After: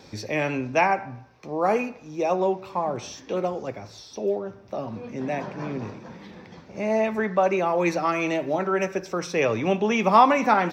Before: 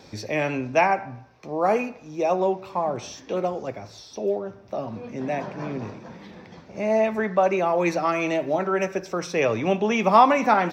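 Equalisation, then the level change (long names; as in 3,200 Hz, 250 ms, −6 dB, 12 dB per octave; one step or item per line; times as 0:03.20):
parametric band 660 Hz −3 dB 0.31 octaves
0.0 dB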